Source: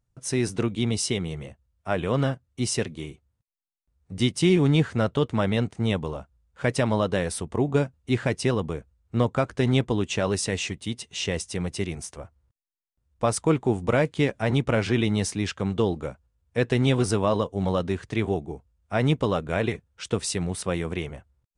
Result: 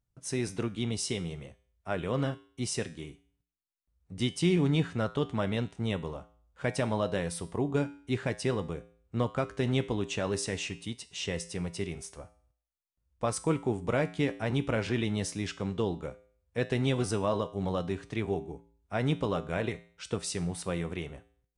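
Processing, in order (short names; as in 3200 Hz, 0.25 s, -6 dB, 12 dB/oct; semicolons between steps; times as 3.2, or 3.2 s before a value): resonator 57 Hz, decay 0.5 s, harmonics odd, mix 60%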